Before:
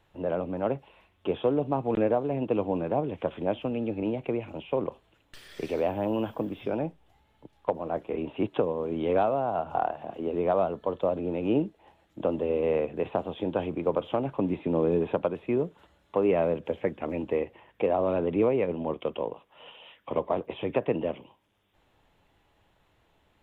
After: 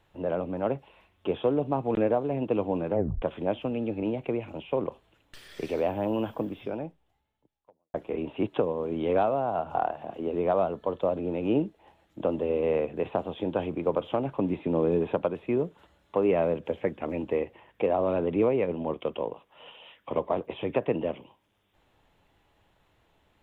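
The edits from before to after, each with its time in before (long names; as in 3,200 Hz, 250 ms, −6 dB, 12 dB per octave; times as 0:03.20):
0:02.91: tape stop 0.31 s
0:06.43–0:07.94: fade out quadratic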